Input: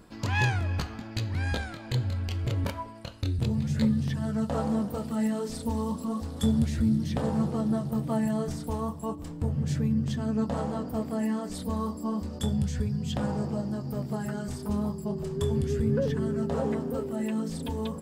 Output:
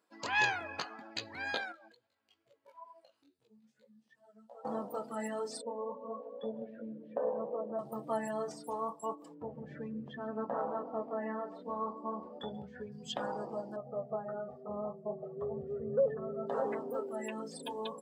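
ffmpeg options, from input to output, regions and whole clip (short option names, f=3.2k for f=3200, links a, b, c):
-filter_complex "[0:a]asettb=1/sr,asplit=3[a][b][c];[a]atrim=end=1.724[d];[b]atrim=start=1.72:end=4.65,asetpts=PTS-STARTPTS,afade=t=in:d=0.004:c=qsin,afade=t=out:st=2.926:d=0.004:c=qsin,acompressor=threshold=-42dB:ratio=4:attack=3.2:release=140:knee=1:detection=peak,flanger=delay=15.5:depth=3.6:speed=2.4[e];[c]atrim=start=4.646[f];[d][e]acrossfade=d=0.004:c1=hsin:c2=qsin[g];[g][f]acrossfade=d=0.004:c1=qsin:c2=hsin,asettb=1/sr,asplit=3[h][i][j];[h]atrim=end=5.614[k];[i]atrim=start=5.61:end=7.79,asetpts=PTS-STARTPTS,afade=t=in:d=0.004:c=qsin,afade=t=out:st=2.176:d=0.004:c=qsin,highpass=260,equalizer=f=330:t=q:w=4:g=-7,equalizer=f=530:t=q:w=4:g=9,equalizer=f=820:t=q:w=4:g=-7,equalizer=f=1.3k:t=q:w=4:g=-9,equalizer=f=2k:t=q:w=4:g=-9,lowpass=f=2.2k:w=0.5412,lowpass=f=2.2k:w=1.3066,aecho=1:1:157:0.251,atrim=end_sample=96138[l];[j]atrim=start=7.786[m];[k][l]acrossfade=d=0.004:c1=hsin:c2=qsin[n];[n][m]acrossfade=d=0.004:c1=qsin:c2=hsin,asettb=1/sr,asplit=3[o][p][q];[o]atrim=end=9.344[r];[p]atrim=start=9.34:end=12.92,asetpts=PTS-STARTPTS,afade=t=in:d=0.004:c=qsin,afade=t=out:st=3.576:d=0.004:c=qsin,lowpass=2.3k,aecho=1:1:137:0.224,atrim=end_sample=157878[s];[q]atrim=start=12.916[t];[r][s]acrossfade=d=0.004:c1=hsin:c2=qsin[u];[u][t]acrossfade=d=0.004:c1=qsin:c2=hsin,asettb=1/sr,asplit=3[v][w][x];[v]atrim=end=13.764[y];[w]atrim=start=13.76:end=16.47,asetpts=PTS-STARTPTS,afade=t=in:d=0.004:c=qsin,afade=t=out:st=2.706:d=0.004:c=qsin,lowpass=1k,aecho=1:1:1.6:0.9,atrim=end_sample=119511[z];[x]atrim=start=16.466[aa];[y][z]acrossfade=d=0.004:c1=hsin:c2=qsin[ab];[ab][aa]acrossfade=d=0.004:c1=qsin:c2=hsin,highpass=510,afftdn=nr=19:nf=-45"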